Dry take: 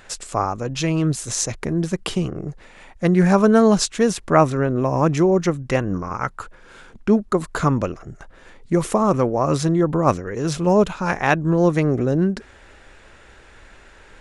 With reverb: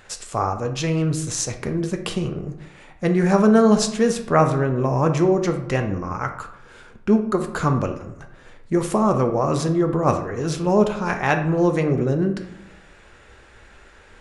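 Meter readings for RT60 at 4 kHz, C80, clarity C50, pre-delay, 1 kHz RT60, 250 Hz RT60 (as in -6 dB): 0.50 s, 12.5 dB, 9.5 dB, 3 ms, 0.80 s, 1.0 s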